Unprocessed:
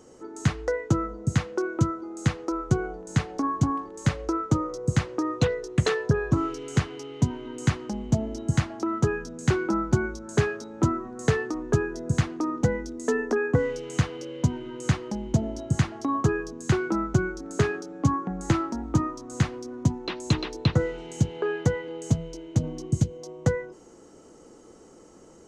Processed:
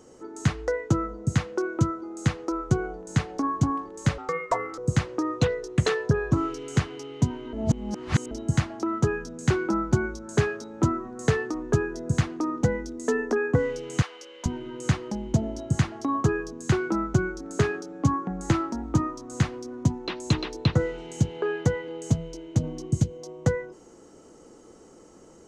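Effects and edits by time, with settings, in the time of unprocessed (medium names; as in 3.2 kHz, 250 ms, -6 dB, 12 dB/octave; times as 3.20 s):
4.18–4.78 s: ring modulator 820 Hz
7.53–8.31 s: reverse
14.02–14.46 s: high-pass 810 Hz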